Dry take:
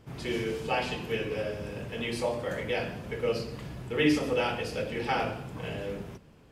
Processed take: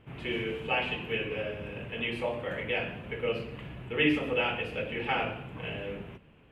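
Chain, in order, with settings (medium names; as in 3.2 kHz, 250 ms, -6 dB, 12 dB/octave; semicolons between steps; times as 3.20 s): resonant high shelf 3.8 kHz -11 dB, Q 3; trim -2.5 dB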